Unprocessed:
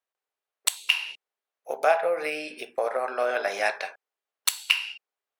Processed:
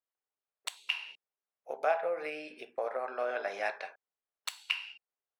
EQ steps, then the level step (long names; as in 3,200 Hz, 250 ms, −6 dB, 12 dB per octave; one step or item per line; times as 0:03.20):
parametric band 14,000 Hz −14.5 dB 1.7 octaves
−7.5 dB